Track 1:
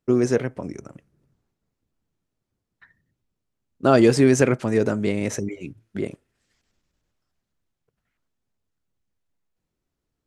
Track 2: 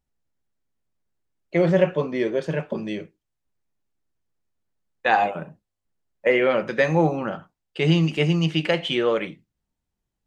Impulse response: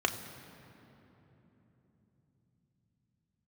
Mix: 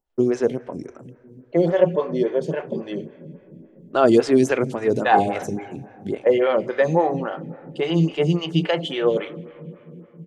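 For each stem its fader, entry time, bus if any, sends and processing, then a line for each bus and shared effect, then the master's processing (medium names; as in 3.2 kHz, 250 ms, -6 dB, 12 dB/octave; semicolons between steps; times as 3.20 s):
-0.5 dB, 0.10 s, send -18.5 dB, peaking EQ 2.8 kHz +5 dB 1.3 oct
+0.5 dB, 0.00 s, send -14 dB, none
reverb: on, RT60 3.6 s, pre-delay 3 ms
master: lamp-driven phase shifter 3.6 Hz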